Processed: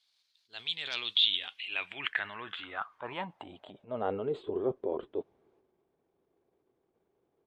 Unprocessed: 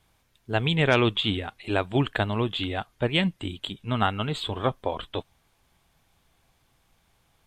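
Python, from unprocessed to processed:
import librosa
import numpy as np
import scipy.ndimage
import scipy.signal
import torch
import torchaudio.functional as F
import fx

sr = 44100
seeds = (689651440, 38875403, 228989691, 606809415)

y = fx.transient(x, sr, attack_db=-6, sustain_db=8)
y = fx.filter_sweep_bandpass(y, sr, from_hz=4300.0, to_hz=390.0, start_s=1.06, end_s=4.42, q=5.1)
y = y * 10.0 ** (6.5 / 20.0)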